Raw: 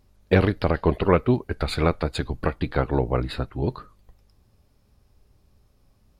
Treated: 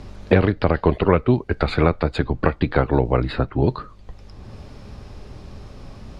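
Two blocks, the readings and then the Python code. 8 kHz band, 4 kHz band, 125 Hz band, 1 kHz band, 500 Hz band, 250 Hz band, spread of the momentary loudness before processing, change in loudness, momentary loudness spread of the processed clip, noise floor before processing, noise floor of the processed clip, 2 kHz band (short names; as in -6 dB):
n/a, +0.5 dB, +4.0 dB, +4.0 dB, +3.5 dB, +4.0 dB, 8 LU, +3.5 dB, 5 LU, -63 dBFS, -44 dBFS, +3.5 dB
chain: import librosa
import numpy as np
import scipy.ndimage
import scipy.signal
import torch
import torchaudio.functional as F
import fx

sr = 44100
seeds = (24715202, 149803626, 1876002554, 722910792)

y = fx.air_absorb(x, sr, metres=96.0)
y = fx.band_squash(y, sr, depth_pct=70)
y = y * librosa.db_to_amplitude(4.0)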